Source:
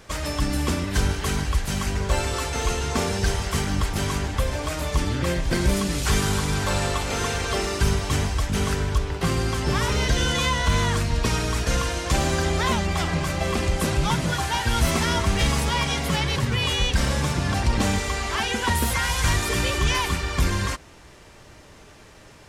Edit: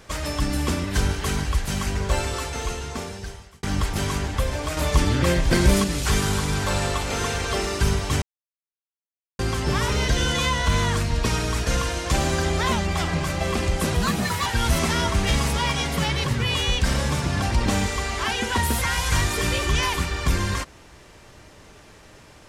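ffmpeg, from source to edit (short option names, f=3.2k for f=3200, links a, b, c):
-filter_complex "[0:a]asplit=8[a][b][c][d][e][f][g][h];[a]atrim=end=3.63,asetpts=PTS-STARTPTS,afade=t=out:st=2.12:d=1.51[i];[b]atrim=start=3.63:end=4.772,asetpts=PTS-STARTPTS,afade=t=in:d=0.004:c=hsin[j];[c]atrim=start=4.768:end=5.842,asetpts=PTS-STARTPTS,volume=4dB[k];[d]atrim=start=5.838:end=8.22,asetpts=PTS-STARTPTS,afade=t=out:st=2.378:d=0.004:c=hsin[l];[e]atrim=start=8.22:end=9.39,asetpts=PTS-STARTPTS,volume=0[m];[f]atrim=start=9.39:end=13.944,asetpts=PTS-STARTPTS,afade=t=in:d=0.004:c=hsin[n];[g]atrim=start=13.94:end=14.58,asetpts=PTS-STARTPTS,asetrate=54243,aresample=44100,atrim=end_sample=22946,asetpts=PTS-STARTPTS[o];[h]atrim=start=14.576[p];[i][j]concat=n=2:v=0:a=1[q];[q][k]acrossfade=d=0.004:c1=hsin:c2=hsin[r];[l][m][n]concat=n=3:v=0:a=1[s];[r][s]acrossfade=d=0.004:c1=hsin:c2=hsin[t];[t][o]acrossfade=d=0.004:c1=hsin:c2=hsin[u];[u][p]acrossfade=d=0.004:c1=hsin:c2=hsin"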